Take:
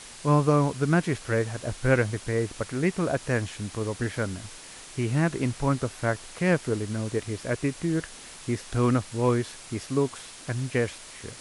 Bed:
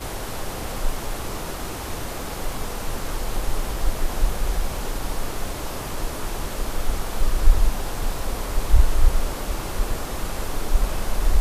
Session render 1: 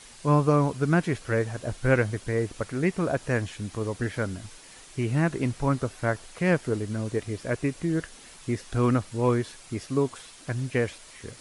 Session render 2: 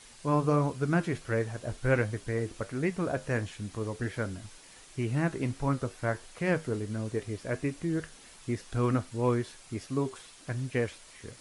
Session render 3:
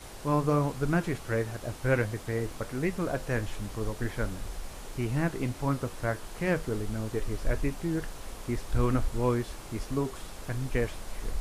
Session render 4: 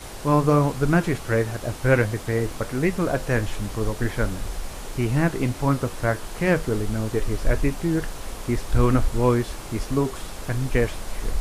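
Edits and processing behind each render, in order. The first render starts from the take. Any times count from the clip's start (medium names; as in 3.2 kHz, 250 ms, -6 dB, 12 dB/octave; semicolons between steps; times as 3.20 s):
noise reduction 6 dB, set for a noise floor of -45 dBFS
flange 1.4 Hz, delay 8.1 ms, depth 2.5 ms, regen -75%
add bed -15 dB
trim +7.5 dB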